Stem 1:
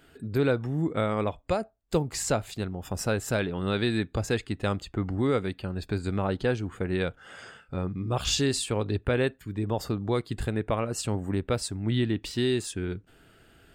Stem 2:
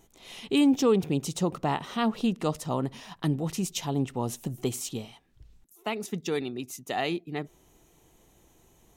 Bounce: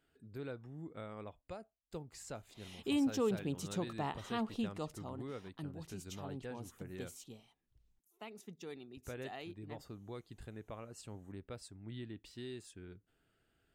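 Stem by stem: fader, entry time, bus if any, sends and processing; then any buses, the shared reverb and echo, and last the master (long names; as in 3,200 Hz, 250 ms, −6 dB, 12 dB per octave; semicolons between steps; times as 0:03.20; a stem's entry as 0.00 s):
−20.0 dB, 0.00 s, muted 0:07.17–0:08.97, no send, no processing
0:04.62 −11 dB → 0:05.14 −18 dB, 2.35 s, no send, no processing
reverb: not used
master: no processing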